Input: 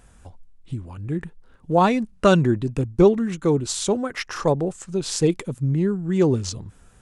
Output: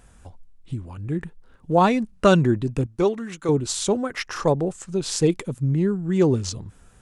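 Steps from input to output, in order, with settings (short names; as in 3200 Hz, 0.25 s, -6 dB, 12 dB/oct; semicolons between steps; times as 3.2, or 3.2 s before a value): 2.86–3.49 low shelf 380 Hz -12 dB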